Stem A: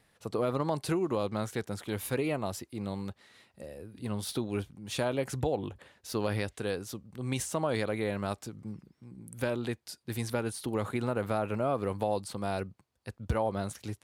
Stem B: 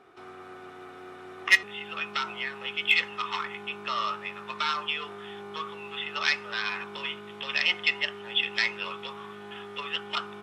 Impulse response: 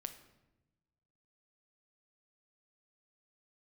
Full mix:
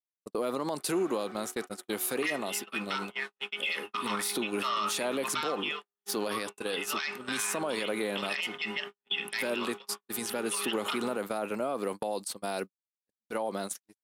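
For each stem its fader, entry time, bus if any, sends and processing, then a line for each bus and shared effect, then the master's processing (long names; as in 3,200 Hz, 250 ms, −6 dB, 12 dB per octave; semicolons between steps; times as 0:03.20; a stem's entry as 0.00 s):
+3.0 dB, 0.00 s, no send, high-shelf EQ 4,500 Hz +11 dB
+1.0 dB, 0.75 s, no send, no processing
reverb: not used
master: high-pass filter 210 Hz 24 dB per octave; noise gate −32 dBFS, range −59 dB; brickwall limiter −22 dBFS, peak gain reduction 17 dB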